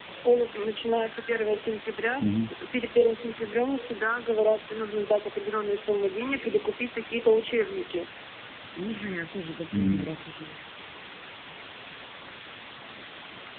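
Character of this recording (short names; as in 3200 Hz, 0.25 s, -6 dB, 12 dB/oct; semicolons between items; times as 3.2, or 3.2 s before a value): phasing stages 4, 1.4 Hz, lowest notch 640–1700 Hz; a quantiser's noise floor 6-bit, dither triangular; AMR-NB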